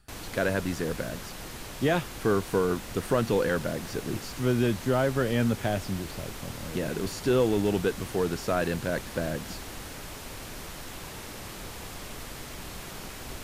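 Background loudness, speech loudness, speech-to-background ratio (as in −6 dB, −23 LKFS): −40.0 LKFS, −28.5 LKFS, 11.5 dB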